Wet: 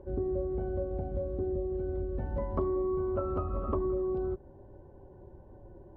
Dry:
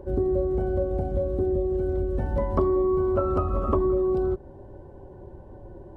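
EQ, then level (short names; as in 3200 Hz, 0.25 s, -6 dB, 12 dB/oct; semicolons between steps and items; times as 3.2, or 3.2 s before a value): air absorption 240 m; -7.5 dB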